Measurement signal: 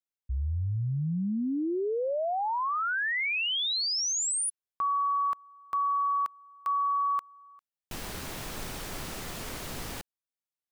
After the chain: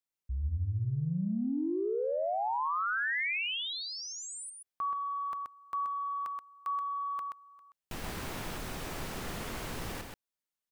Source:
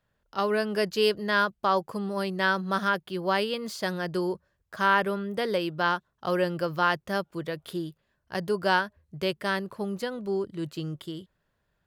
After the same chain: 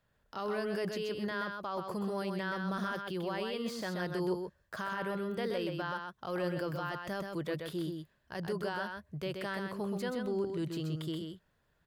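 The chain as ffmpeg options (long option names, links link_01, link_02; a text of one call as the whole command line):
ffmpeg -i in.wav -filter_complex "[0:a]areverse,acompressor=threshold=-32dB:ratio=6:attack=9.8:release=22:knee=6:detection=rms,areverse,alimiter=level_in=4dB:limit=-24dB:level=0:latency=1:release=143,volume=-4dB,acrossover=split=2900[link_01][link_02];[link_02]acompressor=threshold=-45dB:ratio=4:attack=1:release=60[link_03];[link_01][link_03]amix=inputs=2:normalize=0,aecho=1:1:128:0.562" out.wav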